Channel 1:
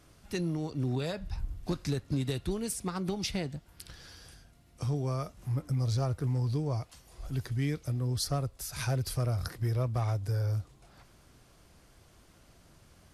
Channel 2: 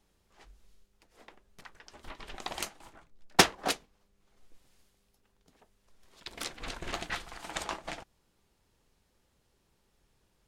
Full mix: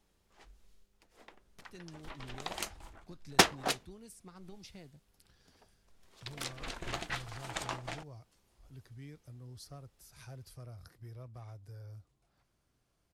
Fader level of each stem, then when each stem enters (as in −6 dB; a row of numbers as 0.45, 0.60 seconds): −18.5, −2.0 decibels; 1.40, 0.00 seconds